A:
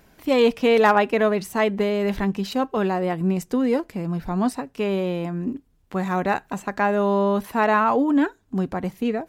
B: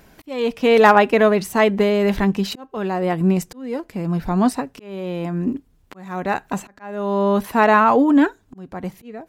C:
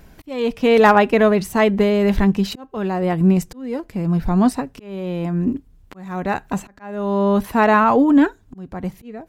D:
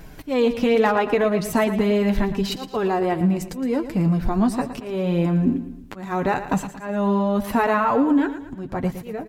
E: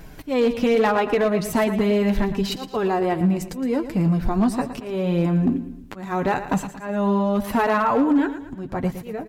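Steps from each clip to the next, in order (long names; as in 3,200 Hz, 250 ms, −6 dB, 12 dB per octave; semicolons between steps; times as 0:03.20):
volume swells 624 ms; level +5 dB
low-shelf EQ 140 Hz +11 dB; level −1 dB
downward compressor 6 to 1, threshold −21 dBFS, peak gain reduction 13 dB; flanger 0.77 Hz, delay 6.2 ms, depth 3.2 ms, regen −30%; on a send: repeating echo 114 ms, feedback 44%, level −12 dB; on the sum: level +8 dB
hard clipping −12.5 dBFS, distortion −24 dB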